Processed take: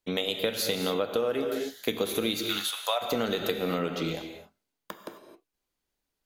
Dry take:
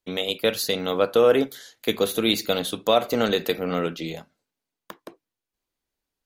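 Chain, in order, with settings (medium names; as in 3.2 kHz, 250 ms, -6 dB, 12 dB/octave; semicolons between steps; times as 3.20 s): 2.43–3.01 s: high-pass 1.5 kHz -> 590 Hz 24 dB/octave; gated-style reverb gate 290 ms flat, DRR 6.5 dB; compression 10:1, threshold -24 dBFS, peak gain reduction 13 dB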